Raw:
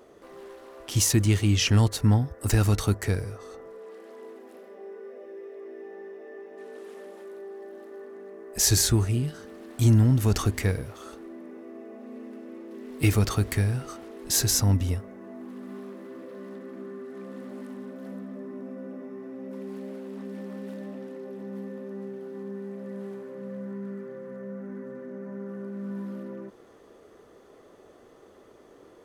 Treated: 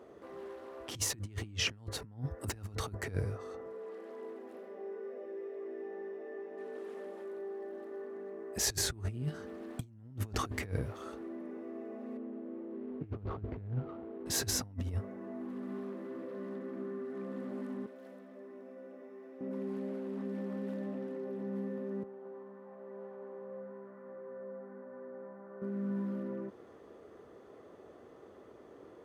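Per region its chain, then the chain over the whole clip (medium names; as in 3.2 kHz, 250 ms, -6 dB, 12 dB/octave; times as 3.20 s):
12.17–14.26 s: median filter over 25 samples + distance through air 230 m + tape noise reduction on one side only decoder only
17.86–19.41 s: high-pass 550 Hz + peaking EQ 1.1 kHz -7 dB 1.5 oct
22.03–25.62 s: band-pass filter 870 Hz, Q 1.5 + delay 219 ms -5 dB
whole clip: high-pass 55 Hz 24 dB/octave; treble shelf 3.2 kHz -11 dB; compressor with a negative ratio -29 dBFS, ratio -0.5; trim -6 dB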